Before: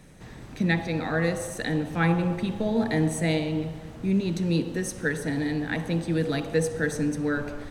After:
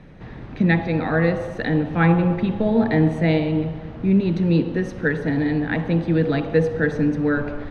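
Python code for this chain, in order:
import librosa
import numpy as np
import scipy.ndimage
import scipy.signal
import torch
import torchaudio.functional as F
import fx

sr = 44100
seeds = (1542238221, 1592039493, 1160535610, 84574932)

y = fx.air_absorb(x, sr, metres=300.0)
y = F.gain(torch.from_numpy(y), 7.0).numpy()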